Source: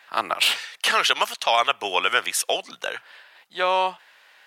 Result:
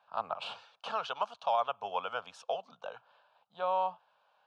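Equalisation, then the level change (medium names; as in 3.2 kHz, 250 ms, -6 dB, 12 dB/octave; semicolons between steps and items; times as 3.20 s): tape spacing loss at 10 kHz 38 dB; static phaser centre 810 Hz, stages 4; -4.5 dB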